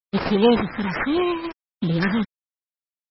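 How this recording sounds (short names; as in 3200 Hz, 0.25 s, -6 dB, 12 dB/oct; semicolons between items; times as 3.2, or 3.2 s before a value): a quantiser's noise floor 6-bit, dither none; phasing stages 4, 0.81 Hz, lowest notch 600–4800 Hz; aliases and images of a low sample rate 3500 Hz, jitter 20%; MP3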